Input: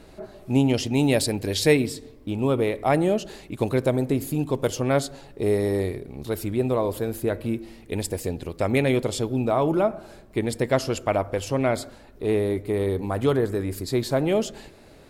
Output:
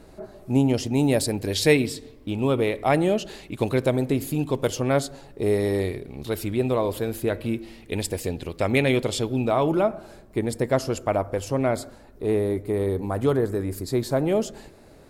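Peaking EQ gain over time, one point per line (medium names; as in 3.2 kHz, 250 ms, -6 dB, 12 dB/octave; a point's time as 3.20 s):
peaking EQ 3 kHz 1.4 oct
1.18 s -5.5 dB
1.78 s +3.5 dB
4.51 s +3.5 dB
5.28 s -3.5 dB
5.66 s +4.5 dB
9.60 s +4.5 dB
10.43 s -5.5 dB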